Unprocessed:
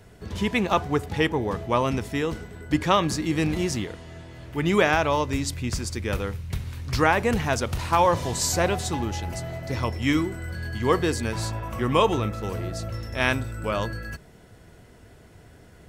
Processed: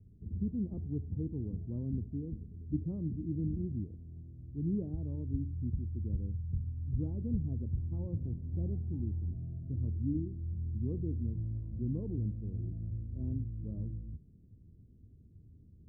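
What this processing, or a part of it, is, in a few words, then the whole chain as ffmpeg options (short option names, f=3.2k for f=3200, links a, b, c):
the neighbour's flat through the wall: -af "lowpass=f=280:w=0.5412,lowpass=f=280:w=1.3066,equalizer=f=85:t=o:w=0.77:g=5,volume=-8dB"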